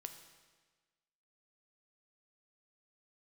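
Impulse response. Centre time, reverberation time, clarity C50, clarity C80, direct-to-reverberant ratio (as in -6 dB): 20 ms, 1.4 s, 9.0 dB, 10.0 dB, 6.5 dB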